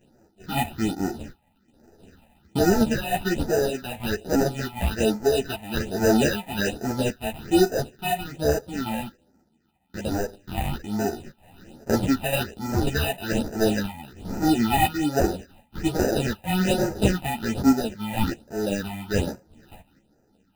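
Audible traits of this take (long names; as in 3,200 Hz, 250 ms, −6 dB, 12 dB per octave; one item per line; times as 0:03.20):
aliases and images of a low sample rate 1,100 Hz, jitter 0%
phaser sweep stages 6, 1.2 Hz, lowest notch 370–3,300 Hz
sample-and-hold tremolo
a shimmering, thickened sound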